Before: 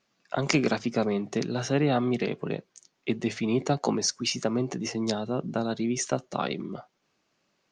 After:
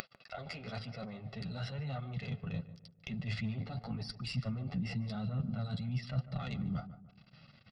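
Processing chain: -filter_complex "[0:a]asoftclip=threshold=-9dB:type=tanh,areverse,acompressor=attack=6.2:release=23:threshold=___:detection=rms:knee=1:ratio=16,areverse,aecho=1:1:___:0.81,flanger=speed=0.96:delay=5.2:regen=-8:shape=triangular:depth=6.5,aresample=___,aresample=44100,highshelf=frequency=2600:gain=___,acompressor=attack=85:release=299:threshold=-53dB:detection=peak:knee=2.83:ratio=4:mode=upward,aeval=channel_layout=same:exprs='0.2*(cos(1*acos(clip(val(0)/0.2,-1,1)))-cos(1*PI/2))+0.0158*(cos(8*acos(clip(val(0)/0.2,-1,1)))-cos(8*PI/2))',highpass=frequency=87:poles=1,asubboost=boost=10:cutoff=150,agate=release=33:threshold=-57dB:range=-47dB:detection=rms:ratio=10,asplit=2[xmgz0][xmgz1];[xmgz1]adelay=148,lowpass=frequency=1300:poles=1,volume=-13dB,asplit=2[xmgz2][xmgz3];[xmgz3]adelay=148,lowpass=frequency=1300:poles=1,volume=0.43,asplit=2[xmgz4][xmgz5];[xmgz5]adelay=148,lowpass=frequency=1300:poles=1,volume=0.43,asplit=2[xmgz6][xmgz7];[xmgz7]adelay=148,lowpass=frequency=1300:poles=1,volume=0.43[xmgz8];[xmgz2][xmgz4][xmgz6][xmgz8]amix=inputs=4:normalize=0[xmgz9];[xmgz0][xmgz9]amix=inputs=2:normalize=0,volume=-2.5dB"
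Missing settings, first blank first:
-37dB, 1.5, 11025, 4.5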